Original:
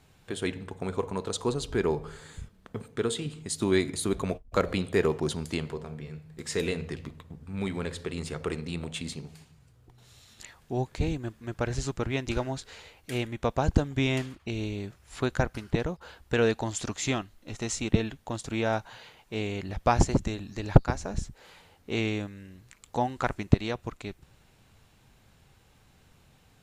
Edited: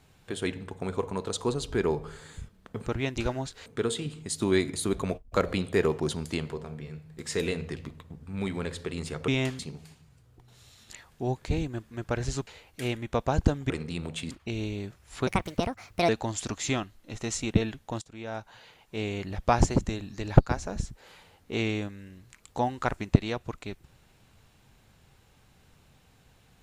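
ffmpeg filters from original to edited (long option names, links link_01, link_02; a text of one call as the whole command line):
ffmpeg -i in.wav -filter_complex "[0:a]asplit=11[link_01][link_02][link_03][link_04][link_05][link_06][link_07][link_08][link_09][link_10][link_11];[link_01]atrim=end=2.862[link_12];[link_02]atrim=start=11.968:end=12.772[link_13];[link_03]atrim=start=2.858:end=8.482[link_14];[link_04]atrim=start=13.998:end=14.312[link_15];[link_05]atrim=start=9.088:end=11.972[link_16];[link_06]atrim=start=12.768:end=14.002[link_17];[link_07]atrim=start=8.478:end=9.092[link_18];[link_08]atrim=start=14.308:end=15.274[link_19];[link_09]atrim=start=15.27:end=16.47,asetpts=PTS-STARTPTS,asetrate=64827,aresample=44100[link_20];[link_10]atrim=start=16.466:end=18.4,asetpts=PTS-STARTPTS,afade=type=out:start_time=1.93:duration=0.004:curve=hsin:silence=0.1[link_21];[link_11]atrim=start=18.4,asetpts=PTS-STARTPTS,afade=type=in:duration=1.05:silence=0.1[link_22];[link_12][link_13]acrossfade=duration=0.004:curve1=hsin:curve2=hsin[link_23];[link_23][link_14]acrossfade=duration=0.004:curve1=hsin:curve2=hsin[link_24];[link_24][link_15]acrossfade=duration=0.004:curve1=hsin:curve2=hsin[link_25];[link_25][link_16]acrossfade=duration=0.004:curve1=hsin:curve2=hsin[link_26];[link_26][link_17]acrossfade=duration=0.004:curve1=hsin:curve2=hsin[link_27];[link_27][link_18]acrossfade=duration=0.004:curve1=hsin:curve2=hsin[link_28];[link_28][link_19]acrossfade=duration=0.004:curve1=hsin:curve2=hsin[link_29];[link_29][link_20]acrossfade=duration=0.004:curve1=hsin:curve2=hsin[link_30];[link_21][link_22]concat=n=2:v=0:a=1[link_31];[link_30][link_31]acrossfade=duration=0.004:curve1=hsin:curve2=hsin" out.wav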